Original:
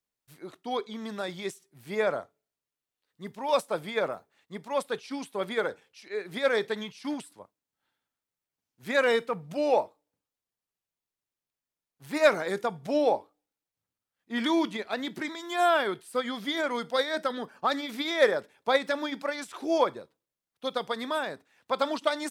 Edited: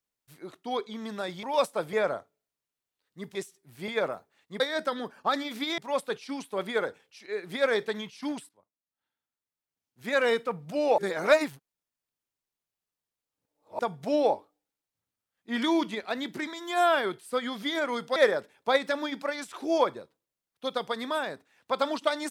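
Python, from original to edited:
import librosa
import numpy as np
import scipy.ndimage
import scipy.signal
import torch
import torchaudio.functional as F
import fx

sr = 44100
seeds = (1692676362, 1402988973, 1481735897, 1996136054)

y = fx.edit(x, sr, fx.swap(start_s=1.43, length_s=0.53, other_s=3.38, other_length_s=0.5),
    fx.fade_in_from(start_s=7.31, length_s=1.97, floor_db=-19.5),
    fx.reverse_span(start_s=9.8, length_s=2.81),
    fx.move(start_s=16.98, length_s=1.18, to_s=4.6), tone=tone)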